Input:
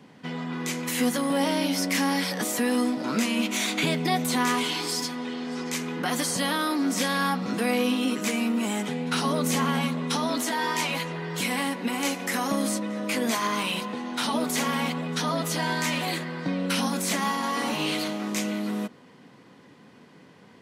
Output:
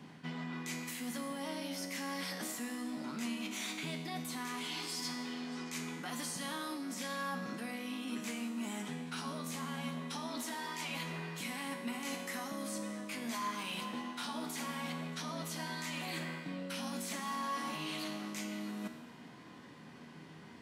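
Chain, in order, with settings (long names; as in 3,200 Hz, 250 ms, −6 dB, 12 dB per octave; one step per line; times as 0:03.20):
reversed playback
downward compressor 12 to 1, threshold −36 dBFS, peak gain reduction 16.5 dB
reversed playback
parametric band 490 Hz −6.5 dB 0.46 octaves
tuned comb filter 79 Hz, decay 1.3 s, harmonics all, mix 80%
level +10.5 dB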